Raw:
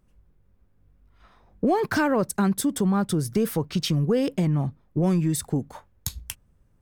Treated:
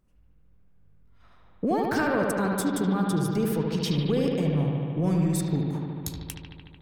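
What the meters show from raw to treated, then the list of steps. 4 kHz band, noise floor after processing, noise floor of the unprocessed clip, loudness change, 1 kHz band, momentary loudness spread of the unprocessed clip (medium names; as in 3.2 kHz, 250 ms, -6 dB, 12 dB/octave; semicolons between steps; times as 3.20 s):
-2.5 dB, -57 dBFS, -63 dBFS, -1.5 dB, -1.5 dB, 12 LU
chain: bucket-brigade echo 74 ms, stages 2048, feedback 82%, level -4 dB; trim -4.5 dB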